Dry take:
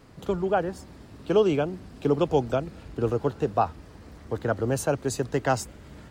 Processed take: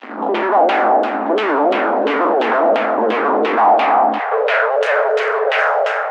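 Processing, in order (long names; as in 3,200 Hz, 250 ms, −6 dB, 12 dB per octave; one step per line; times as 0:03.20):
peak hold with a decay on every bin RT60 1.18 s
high-shelf EQ 5,900 Hz −6 dB
fuzz pedal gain 42 dB, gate −50 dBFS
auto-filter low-pass saw down 2.9 Hz 520–3,100 Hz
Chebyshev high-pass with heavy ripple 210 Hz, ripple 6 dB, from 0:04.18 420 Hz
echo through a band-pass that steps 255 ms, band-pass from 850 Hz, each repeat 0.7 octaves, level −11.5 dB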